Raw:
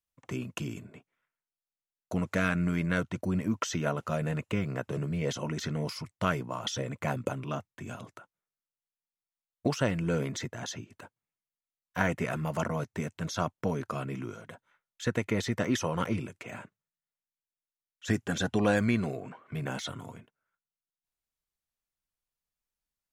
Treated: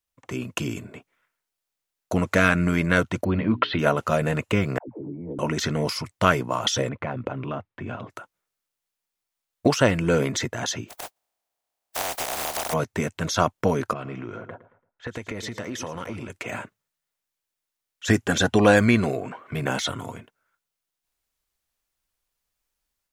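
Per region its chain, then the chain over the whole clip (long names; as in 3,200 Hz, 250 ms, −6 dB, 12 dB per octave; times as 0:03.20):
0:03.24–0:03.79: Butterworth low-pass 4,300 Hz 72 dB per octave + mains-hum notches 60/120/180/240/300/360/420 Hz
0:04.78–0:05.39: formant resonators in series u + all-pass dispersion lows, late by 105 ms, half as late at 450 Hz
0:06.89–0:08.10: downward compressor 3 to 1, threshold −34 dBFS + high-frequency loss of the air 350 metres
0:10.88–0:12.72: compressing power law on the bin magnitudes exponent 0.12 + parametric band 710 Hz +14 dB 0.89 octaves + downward compressor 5 to 1, threshold −36 dBFS
0:13.93–0:16.30: repeating echo 112 ms, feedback 33%, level −15 dB + low-pass that shuts in the quiet parts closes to 730 Hz, open at −26 dBFS + downward compressor 5 to 1, threshold −39 dBFS
whole clip: parametric band 160 Hz −5.5 dB 1 octave; automatic gain control gain up to 5.5 dB; level +5 dB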